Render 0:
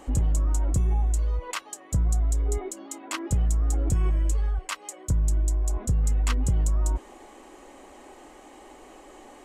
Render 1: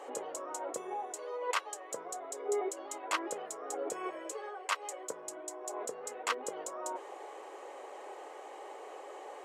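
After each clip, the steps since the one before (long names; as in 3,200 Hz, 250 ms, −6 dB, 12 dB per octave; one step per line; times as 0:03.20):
Chebyshev high-pass filter 430 Hz, order 4
spectral tilt −2.5 dB per octave
level +2.5 dB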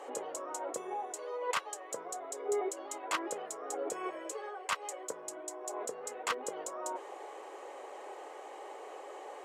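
harmonic generator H 2 −27 dB, 4 −36 dB, 5 −13 dB, 7 −22 dB, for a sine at −17.5 dBFS
level −3.5 dB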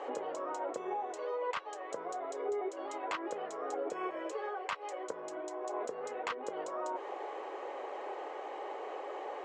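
downward compressor 6 to 1, threshold −38 dBFS, peak gain reduction 10 dB
high-frequency loss of the air 170 metres
level +5.5 dB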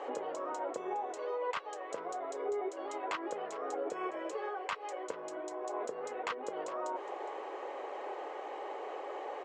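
single-tap delay 413 ms −16.5 dB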